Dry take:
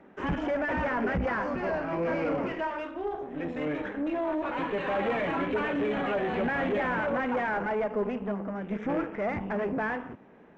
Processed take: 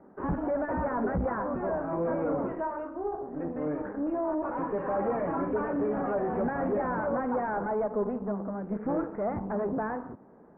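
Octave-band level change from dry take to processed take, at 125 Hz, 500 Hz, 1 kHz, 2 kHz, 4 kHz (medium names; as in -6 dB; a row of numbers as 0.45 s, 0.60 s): 0.0 dB, 0.0 dB, -0.5 dB, -9.0 dB, under -25 dB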